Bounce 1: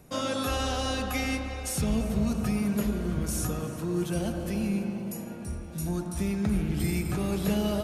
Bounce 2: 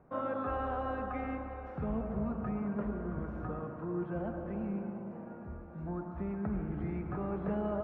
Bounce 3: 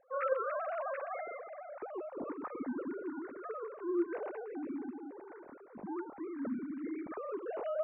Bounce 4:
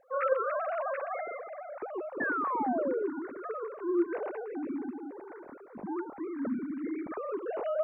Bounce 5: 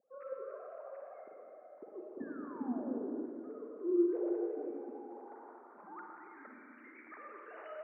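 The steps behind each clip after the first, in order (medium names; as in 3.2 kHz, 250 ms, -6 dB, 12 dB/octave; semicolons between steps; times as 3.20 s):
low-pass 1.4 kHz 24 dB/octave; bass shelf 450 Hz -10 dB
formants replaced by sine waves; trim -2.5 dB
painted sound fall, 2.20–3.08 s, 380–1800 Hz -36 dBFS; trim +4.5 dB
band-pass sweep 230 Hz -> 1.9 kHz, 3.39–6.47 s; Schroeder reverb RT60 2.5 s, DRR 0 dB; trim -2.5 dB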